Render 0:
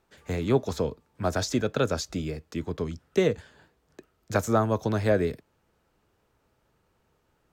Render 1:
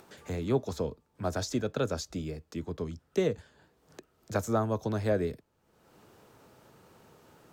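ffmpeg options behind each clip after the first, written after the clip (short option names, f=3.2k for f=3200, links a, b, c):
-filter_complex "[0:a]equalizer=f=2.1k:t=o:w=1.5:g=-3.5,acrossover=split=100[a][b];[b]acompressor=mode=upward:threshold=-37dB:ratio=2.5[c];[a][c]amix=inputs=2:normalize=0,volume=-4.5dB"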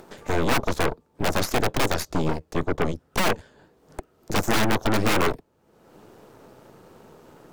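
-af "aeval=exprs='(mod(15.8*val(0)+1,2)-1)/15.8':c=same,equalizer=f=370:t=o:w=2.9:g=7,aeval=exprs='0.141*(cos(1*acos(clip(val(0)/0.141,-1,1)))-cos(1*PI/2))+0.0447*(cos(8*acos(clip(val(0)/0.141,-1,1)))-cos(8*PI/2))':c=same,volume=3dB"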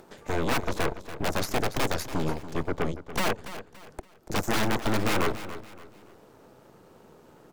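-af "aecho=1:1:285|570|855:0.224|0.0761|0.0259,volume=-4.5dB"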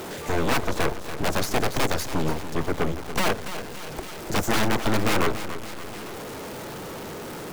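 -af "aeval=exprs='val(0)+0.5*0.0211*sgn(val(0))':c=same,volume=2.5dB"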